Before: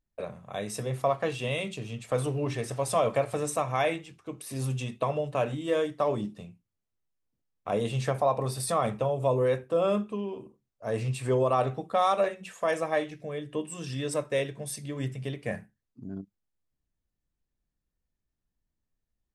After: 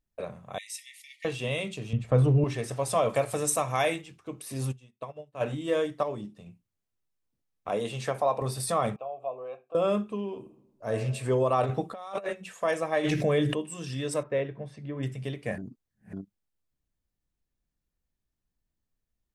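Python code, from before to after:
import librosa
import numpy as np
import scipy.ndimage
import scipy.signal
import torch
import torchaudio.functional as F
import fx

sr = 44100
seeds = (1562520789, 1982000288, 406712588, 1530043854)

y = fx.brickwall_highpass(x, sr, low_hz=1800.0, at=(0.58, 1.25))
y = fx.riaa(y, sr, side='playback', at=(1.93, 2.44))
y = fx.high_shelf(y, sr, hz=5600.0, db=11.5, at=(3.09, 4.02))
y = fx.upward_expand(y, sr, threshold_db=-40.0, expansion=2.5, at=(4.71, 5.4), fade=0.02)
y = fx.highpass(y, sr, hz=270.0, slope=6, at=(7.69, 8.42))
y = fx.vowel_filter(y, sr, vowel='a', at=(8.96, 9.75))
y = fx.reverb_throw(y, sr, start_s=10.4, length_s=0.54, rt60_s=1.0, drr_db=6.0)
y = fx.over_compress(y, sr, threshold_db=-31.0, ratio=-0.5, at=(11.63, 12.33))
y = fx.env_flatten(y, sr, amount_pct=70, at=(13.03, 13.53), fade=0.02)
y = fx.lowpass(y, sr, hz=1900.0, slope=12, at=(14.23, 15.03))
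y = fx.edit(y, sr, fx.clip_gain(start_s=6.03, length_s=0.43, db=-6.0),
    fx.reverse_span(start_s=15.58, length_s=0.55), tone=tone)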